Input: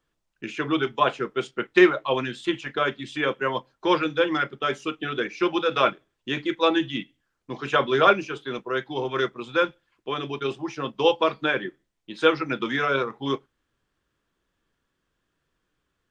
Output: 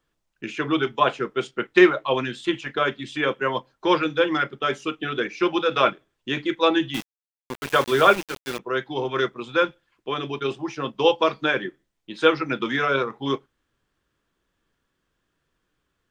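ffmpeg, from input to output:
ffmpeg -i in.wav -filter_complex "[0:a]asettb=1/sr,asplit=3[link_01][link_02][link_03];[link_01]atrim=end=6.944[link_04];[link_02]atrim=start=6.94:end=8.59,asetpts=PTS-STARTPTS,afade=type=in:duration=0.004:curve=qsin,afade=type=out:start_time=1.646:duration=0.004:curve=qsin,aeval=exprs='val(0)*gte(abs(val(0)),0.0355)':channel_layout=same[link_05];[link_03]atrim=start=8.586[link_06];[link_04][link_05]acrossfade=duration=0.004:curve1=hsin:curve2=qsin[link_07];[link_07][link_06]acrossfade=duration=0.004:curve1=qsin:curve2=hsin,asettb=1/sr,asplit=3[link_08][link_09][link_10];[link_08]atrim=end=11.184[link_11];[link_09]atrim=start=11.18:end=11.67,asetpts=PTS-STARTPTS,afade=type=in:duration=0.004:curve=qsin,afade=type=out:start_time=0.486:duration=0.004:curve=qsin,equalizer=frequency=5900:width=2.4:gain=6.5[link_12];[link_10]atrim=start=11.666[link_13];[link_11][link_12]acrossfade=duration=0.004:curve1=hsin:curve2=qsin[link_14];[link_14][link_13]acrossfade=duration=0.004:curve1=qsin:curve2=hsin,volume=1.5dB" out.wav

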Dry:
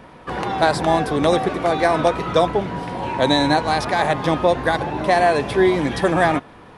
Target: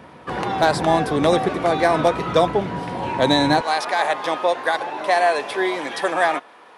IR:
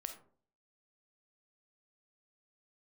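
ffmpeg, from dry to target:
-af "asetnsamples=nb_out_samples=441:pad=0,asendcmd='3.61 highpass f 540',highpass=72,asoftclip=type=hard:threshold=-6.5dB"

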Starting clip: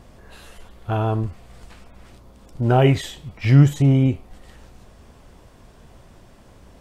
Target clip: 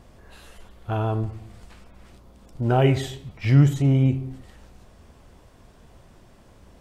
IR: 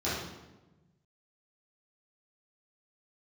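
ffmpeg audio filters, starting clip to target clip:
-filter_complex "[0:a]asplit=2[link_01][link_02];[1:a]atrim=start_sample=2205,afade=type=out:start_time=0.35:duration=0.01,atrim=end_sample=15876,adelay=32[link_03];[link_02][link_03]afir=irnorm=-1:irlink=0,volume=-25dB[link_04];[link_01][link_04]amix=inputs=2:normalize=0,volume=-3.5dB"

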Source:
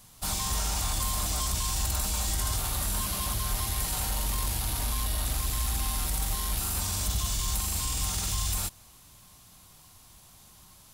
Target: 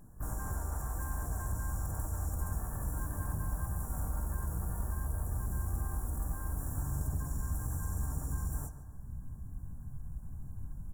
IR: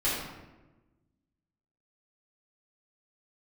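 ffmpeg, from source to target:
-filter_complex "[0:a]afftfilt=real='re*(1-between(b*sr/4096,1200,6700))':imag='im*(1-between(b*sr/4096,1200,6700))':win_size=4096:overlap=0.75,asubboost=boost=9:cutoff=100,asplit=3[link_01][link_02][link_03];[link_02]asetrate=35002,aresample=44100,atempo=1.25992,volume=-10dB[link_04];[link_03]asetrate=66075,aresample=44100,atempo=0.66742,volume=-1dB[link_05];[link_01][link_04][link_05]amix=inputs=3:normalize=0,acrossover=split=260|950[link_06][link_07][link_08];[link_06]acompressor=threshold=-37dB:ratio=6[link_09];[link_07]aeval=exprs='clip(val(0),-1,0.00211)':channel_layout=same[link_10];[link_09][link_10][link_08]amix=inputs=3:normalize=0,tiltshelf=frequency=930:gain=9,asplit=2[link_11][link_12];[link_12]adelay=144,lowpass=frequency=4800:poles=1,volume=-12dB,asplit=2[link_13][link_14];[link_14]adelay=144,lowpass=frequency=4800:poles=1,volume=0.5,asplit=2[link_15][link_16];[link_16]adelay=144,lowpass=frequency=4800:poles=1,volume=0.5,asplit=2[link_17][link_18];[link_18]adelay=144,lowpass=frequency=4800:poles=1,volume=0.5,asplit=2[link_19][link_20];[link_20]adelay=144,lowpass=frequency=4800:poles=1,volume=0.5[link_21];[link_13][link_15][link_17][link_19][link_21]amix=inputs=5:normalize=0[link_22];[link_11][link_22]amix=inputs=2:normalize=0,volume=-8dB"

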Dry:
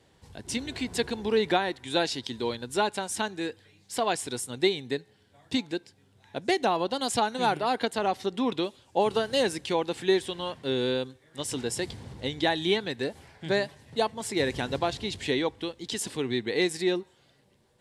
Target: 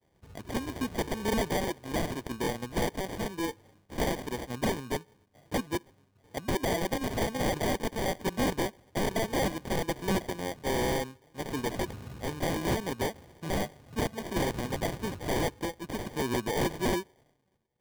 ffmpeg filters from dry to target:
ffmpeg -i in.wav -filter_complex "[0:a]agate=range=-33dB:threshold=-56dB:ratio=3:detection=peak,highshelf=frequency=4200:gain=-5,asplit=2[link_01][link_02];[link_02]alimiter=limit=-18.5dB:level=0:latency=1:release=12,volume=0dB[link_03];[link_01][link_03]amix=inputs=2:normalize=0,acrusher=samples=33:mix=1:aa=0.000001,aeval=exprs='(mod(6.31*val(0)+1,2)-1)/6.31':channel_layout=same,volume=-6dB" out.wav

